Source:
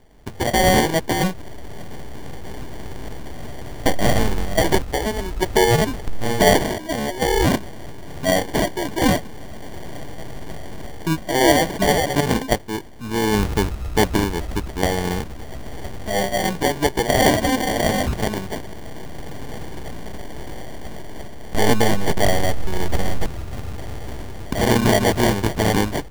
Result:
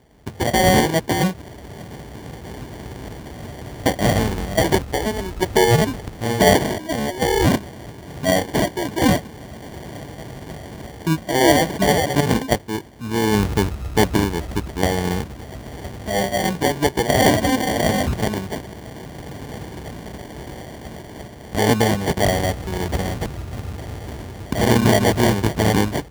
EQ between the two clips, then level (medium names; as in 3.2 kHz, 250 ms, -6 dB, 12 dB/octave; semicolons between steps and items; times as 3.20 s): high-pass 77 Hz; bass shelf 160 Hz +5.5 dB; 0.0 dB